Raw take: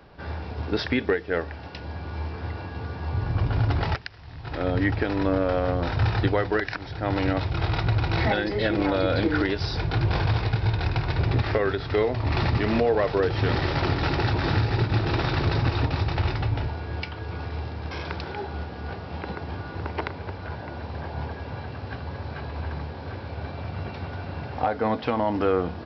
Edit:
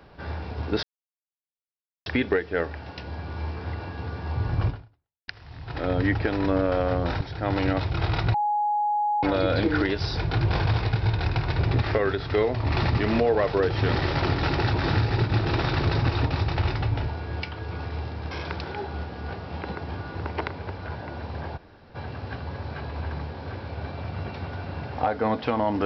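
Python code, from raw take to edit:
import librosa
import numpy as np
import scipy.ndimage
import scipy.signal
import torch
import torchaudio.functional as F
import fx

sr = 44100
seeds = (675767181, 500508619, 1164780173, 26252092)

y = fx.edit(x, sr, fx.insert_silence(at_s=0.83, length_s=1.23),
    fx.fade_out_span(start_s=3.45, length_s=0.6, curve='exp'),
    fx.cut(start_s=5.98, length_s=0.83),
    fx.bleep(start_s=7.94, length_s=0.89, hz=834.0, db=-21.0),
    fx.room_tone_fill(start_s=21.17, length_s=0.38, crossfade_s=0.02), tone=tone)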